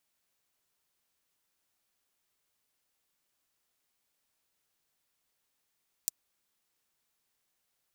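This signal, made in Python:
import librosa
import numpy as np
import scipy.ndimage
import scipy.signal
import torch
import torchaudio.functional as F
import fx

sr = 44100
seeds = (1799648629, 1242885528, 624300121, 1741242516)

y = fx.drum_hat(sr, length_s=0.24, from_hz=6100.0, decay_s=0.02)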